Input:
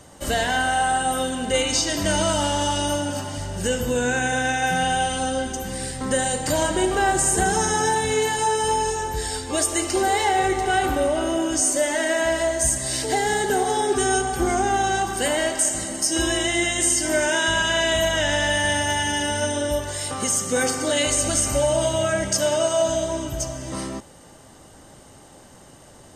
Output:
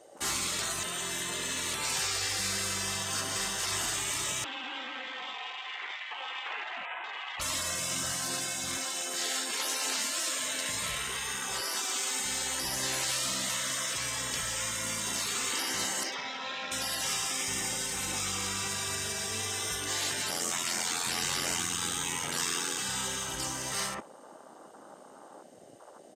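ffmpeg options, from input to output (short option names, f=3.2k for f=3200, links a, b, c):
-filter_complex "[0:a]asplit=2[a][b];[b]afade=t=in:st=2.83:d=0.01,afade=t=out:st=3.79:d=0.01,aecho=0:1:520|1040|1560|2080|2600:0.707946|0.283178|0.113271|0.0453085|0.0181234[c];[a][c]amix=inputs=2:normalize=0,asettb=1/sr,asplit=3[d][e][f];[d]atrim=end=4.444[g];[e]atrim=start=4.44:end=7.4,asetpts=PTS-STARTPTS,afade=t=in:d=0.004:c=qsin,afade=t=out:st=2.956:d=0.004:c=qsin,lowpass=f=3.3k:t=q:w=0.5098,lowpass=f=3.3k:t=q:w=0.6013,lowpass=f=3.3k:t=q:w=0.9,lowpass=f=3.3k:t=q:w=2.563,afreqshift=-3900[h];[f]atrim=start=7.396[i];[g][h]acrossfade=d=0.004:c1=hsin:c2=qsin[j];[j][i]acrossfade=d=0.004:c1=qsin:c2=hsin,asettb=1/sr,asplit=3[k][l][m];[k]atrim=end=8.774[n];[l]atrim=start=8.77:end=10.69,asetpts=PTS-STARTPTS,afade=t=in:d=0.004:c=qsin,afade=t=out:st=1.916:d=0.004:c=qsin,highpass=270[o];[m]atrim=start=10.686[p];[n][o]acrossfade=d=0.004:c1=hsin:c2=qsin[q];[q][p]acrossfade=d=0.004:c1=qsin:c2=hsin,asettb=1/sr,asplit=3[r][s][t];[r]atrim=end=16.034[u];[s]atrim=start=16.03:end=16.72,asetpts=PTS-STARTPTS,afade=t=in:d=0.004:c=qsin,afade=t=out:st=0.686:d=0.004:c=qsin,highpass=270,equalizer=f=370:t=q:w=4:g=6,equalizer=f=970:t=q:w=4:g=-4,equalizer=f=1.5k:t=q:w=4:g=-5,equalizer=f=2.1k:t=q:w=4:g=6,lowpass=f=3.7k:w=0.5412,lowpass=f=3.7k:w=1.3066[v];[t]atrim=start=16.716[w];[u][v]acrossfade=d=0.004:c1=hsin:c2=qsin[x];[x][w]acrossfade=d=0.004:c1=qsin:c2=hsin,asettb=1/sr,asplit=3[y][z][aa];[y]atrim=end=20.304[ab];[z]atrim=start=20.3:end=22.78,asetpts=PTS-STARTPTS,afade=t=in:d=0.004:c=qsin,afade=t=out:st=2.476:d=0.004:c=qsin,aeval=exprs='val(0)*sin(2*PI*43*n/s)':c=same[ac];[aa]atrim=start=22.776[ad];[ab][ac]acrossfade=d=0.004:c1=hsin:c2=qsin[ae];[ae][ad]acrossfade=d=0.004:c1=qsin:c2=hsin,asplit=3[af][ag][ah];[af]atrim=end=0.592[ai];[ag]atrim=start=0.588:end=1.742,asetpts=PTS-STARTPTS,areverse[aj];[ah]atrim=start=1.738[ak];[ai][aj]acrossfade=d=0.004:c1=hsin:c2=hsin[al];[al][ak]acrossfade=d=0.004:c1=hsin:c2=hsin,highpass=f=770:p=1,afftfilt=real='re*lt(hypot(re,im),0.0447)':imag='im*lt(hypot(re,im),0.0447)':win_size=1024:overlap=0.75,afwtdn=0.00398,volume=5dB"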